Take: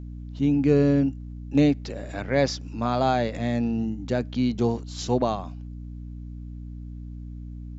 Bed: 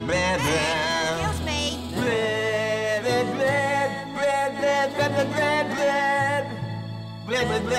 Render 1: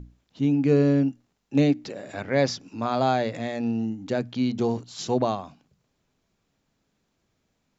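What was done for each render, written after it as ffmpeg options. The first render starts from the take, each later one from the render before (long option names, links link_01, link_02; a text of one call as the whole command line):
ffmpeg -i in.wav -af "bandreject=frequency=60:width_type=h:width=6,bandreject=frequency=120:width_type=h:width=6,bandreject=frequency=180:width_type=h:width=6,bandreject=frequency=240:width_type=h:width=6,bandreject=frequency=300:width_type=h:width=6" out.wav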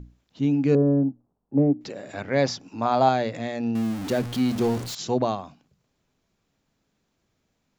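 ffmpeg -i in.wav -filter_complex "[0:a]asettb=1/sr,asplit=3[link_01][link_02][link_03];[link_01]atrim=end=0.754[link_04];[link_02]atrim=start=0.75:end=1.81,asetpts=PTS-STARTPTS,afade=type=in:duration=0.004:curve=qsin,afade=type=out:start_time=1.056:duration=0.004:curve=qsin,lowpass=frequency=1000:width=0.5412,lowpass=frequency=1000:width=1.3066[link_05];[link_03]atrim=start=1.806[link_06];[link_04][link_05]acrossfade=duration=0.004:curve1=hsin:curve2=qsin[link_07];[link_07][link_06]acrossfade=duration=0.004:curve1=qsin:curve2=hsin,asettb=1/sr,asplit=3[link_08][link_09][link_10];[link_08]atrim=end=2.464[link_11];[link_09]atrim=start=2.46:end=3.09,asetpts=PTS-STARTPTS,afade=type=in:duration=0.004:curve=qsin,afade=type=out:start_time=0.626:duration=0.004:curve=qsin,equalizer=frequency=820:width=1.7:gain=6.5[link_12];[link_10]atrim=start=3.086[link_13];[link_11][link_12]acrossfade=duration=0.004:curve1=hsin:curve2=qsin[link_14];[link_14][link_13]acrossfade=duration=0.004:curve1=qsin:curve2=hsin,asettb=1/sr,asplit=3[link_15][link_16][link_17];[link_15]atrim=end=3.754[link_18];[link_16]atrim=start=3.75:end=4.95,asetpts=PTS-STARTPTS,afade=type=in:duration=0.004:curve=qsin,afade=type=out:start_time=1.196:duration=0.004:curve=qsin,aeval=exprs='val(0)+0.5*0.0335*sgn(val(0))':channel_layout=same[link_19];[link_17]atrim=start=4.946[link_20];[link_18][link_19]acrossfade=duration=0.004:curve1=hsin:curve2=qsin[link_21];[link_21][link_20]acrossfade=duration=0.004:curve1=qsin:curve2=hsin" out.wav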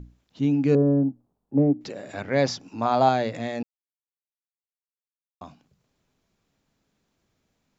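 ffmpeg -i in.wav -filter_complex "[0:a]asplit=3[link_01][link_02][link_03];[link_01]atrim=end=3.63,asetpts=PTS-STARTPTS,afade=type=out:start_time=3.626:duration=0.004:curve=hsin[link_04];[link_02]atrim=start=3.63:end=5.41,asetpts=PTS-STARTPTS,volume=0[link_05];[link_03]atrim=start=5.41,asetpts=PTS-STARTPTS,afade=type=in:duration=0.004:curve=hsin[link_06];[link_04][link_05][link_06]concat=n=3:v=0:a=1" out.wav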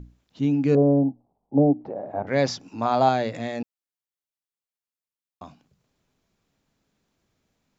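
ffmpeg -i in.wav -filter_complex "[0:a]asettb=1/sr,asplit=3[link_01][link_02][link_03];[link_01]atrim=end=0.774[link_04];[link_02]atrim=start=0.77:end=2.27,asetpts=PTS-STARTPTS,afade=type=in:duration=0.004:curve=qsin,afade=type=out:start_time=1.496:duration=0.004:curve=qsin,lowpass=frequency=790:width_type=q:width=3.4[link_05];[link_03]atrim=start=2.266[link_06];[link_04][link_05]acrossfade=duration=0.004:curve1=hsin:curve2=qsin[link_07];[link_07][link_06]acrossfade=duration=0.004:curve1=qsin:curve2=hsin" out.wav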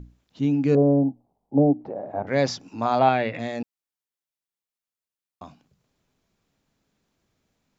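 ffmpeg -i in.wav -filter_complex "[0:a]asettb=1/sr,asplit=3[link_01][link_02][link_03];[link_01]atrim=end=2.994[link_04];[link_02]atrim=start=2.99:end=3.39,asetpts=PTS-STARTPTS,afade=type=in:duration=0.004:curve=qsin,afade=type=out:start_time=0.396:duration=0.004:curve=qsin,lowpass=frequency=2500:width_type=q:width=2.7[link_05];[link_03]atrim=start=3.386[link_06];[link_04][link_05]acrossfade=duration=0.004:curve1=hsin:curve2=qsin[link_07];[link_07][link_06]acrossfade=duration=0.004:curve1=qsin:curve2=hsin" out.wav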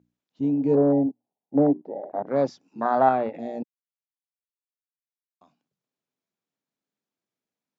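ffmpeg -i in.wav -af "highpass=200,afwtdn=0.0447" out.wav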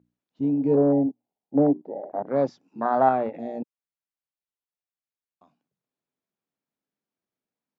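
ffmpeg -i in.wav -af "highshelf=frequency=3600:gain=-9.5" out.wav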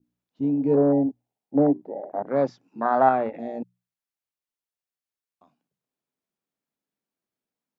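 ffmpeg -i in.wav -af "bandreject=frequency=60:width_type=h:width=6,bandreject=frequency=120:width_type=h:width=6,bandreject=frequency=180:width_type=h:width=6,adynamicequalizer=threshold=0.0178:dfrequency=1700:dqfactor=0.92:tfrequency=1700:tqfactor=0.92:attack=5:release=100:ratio=0.375:range=2:mode=boostabove:tftype=bell" out.wav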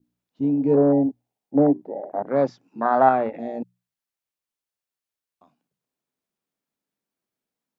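ffmpeg -i in.wav -af "volume=2dB" out.wav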